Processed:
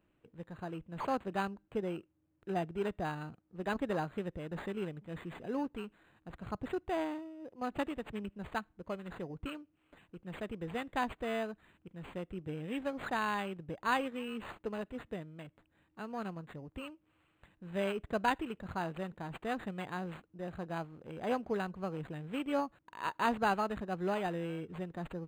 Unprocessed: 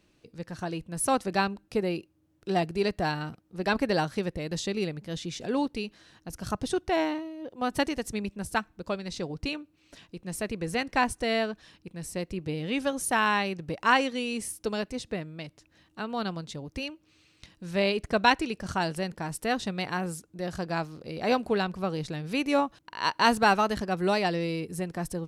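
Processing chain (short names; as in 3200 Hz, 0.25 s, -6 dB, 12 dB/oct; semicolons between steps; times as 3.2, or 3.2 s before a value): decimation joined by straight lines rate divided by 8×; gain -8 dB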